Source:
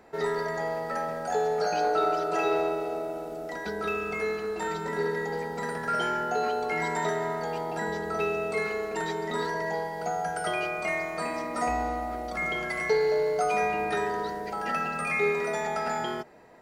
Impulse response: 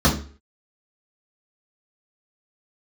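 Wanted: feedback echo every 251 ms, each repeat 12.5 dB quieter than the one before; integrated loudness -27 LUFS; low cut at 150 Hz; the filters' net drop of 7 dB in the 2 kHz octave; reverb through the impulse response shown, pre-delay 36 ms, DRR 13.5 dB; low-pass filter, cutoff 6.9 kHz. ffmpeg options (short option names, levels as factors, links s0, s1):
-filter_complex "[0:a]highpass=150,lowpass=6900,equalizer=f=2000:t=o:g=-8.5,aecho=1:1:251|502|753:0.237|0.0569|0.0137,asplit=2[s0][s1];[1:a]atrim=start_sample=2205,adelay=36[s2];[s1][s2]afir=irnorm=-1:irlink=0,volume=0.0237[s3];[s0][s3]amix=inputs=2:normalize=0,volume=1.26"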